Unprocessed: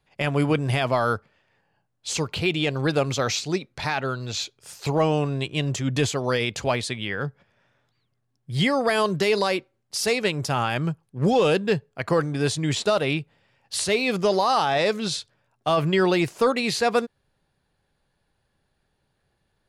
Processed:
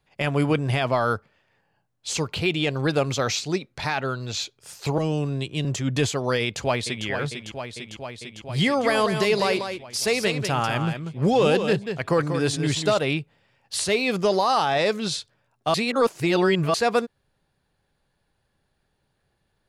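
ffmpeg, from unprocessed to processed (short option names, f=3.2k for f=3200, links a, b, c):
-filter_complex "[0:a]asettb=1/sr,asplit=3[a][b][c];[a]atrim=end=0.604[d];[b]atrim=start=0.6:end=1.11,asetpts=PTS-STARTPTS,afade=t=in:d=0.004:c=qsin,afade=t=out:st=0.506:d=0.004:c=qsin,highshelf=f=8.4k:g=-6[e];[c]atrim=start=1.106[f];[d][e]acrossfade=d=0.004:c1=hsin:c2=qsin[g];[g][f]acrossfade=d=0.004:c1=qsin:c2=hsin,asettb=1/sr,asplit=3[h][i][j];[h]atrim=end=4.984[k];[i]atrim=start=4.98:end=5.65,asetpts=PTS-STARTPTS,afade=t=in:d=0.004:c=qsin,afade=t=out:st=0.666:d=0.004:c=qsin,acrossover=split=430|3000[l][m][n];[m]acompressor=threshold=-42dB:ratio=2:attack=3.2:release=140:knee=2.83:detection=peak[o];[l][o][n]amix=inputs=3:normalize=0[p];[j]atrim=start=5.646[q];[k][p]acrossfade=d=0.004:c1=hsin:c2=qsin[r];[r][q]acrossfade=d=0.004:c1=qsin:c2=hsin,asplit=2[s][t];[t]afade=t=in:st=6.41:d=0.01,afade=t=out:st=7.06:d=0.01,aecho=0:1:450|900|1350|1800|2250|2700|3150|3600|4050|4500|4950|5400:0.398107|0.318486|0.254789|0.203831|0.163065|0.130452|0.104361|0.0834891|0.0667913|0.053433|0.0427464|0.0341971[u];[s][u]amix=inputs=2:normalize=0,asplit=3[v][w][x];[v]afade=t=out:st=8.83:d=0.02[y];[w]aecho=1:1:191:0.422,afade=t=in:st=8.83:d=0.02,afade=t=out:st=12.97:d=0.02[z];[x]afade=t=in:st=12.97:d=0.02[aa];[y][z][aa]amix=inputs=3:normalize=0,asplit=3[ab][ac][ad];[ab]atrim=end=15.742[ae];[ac]atrim=start=15.738:end=16.742,asetpts=PTS-STARTPTS,areverse[af];[ad]atrim=start=16.738[ag];[ae][af]acrossfade=d=0.004:c1=hsin:c2=hsin[ah];[ah][ag]acrossfade=d=0.004:c1=hsin:c2=hsin"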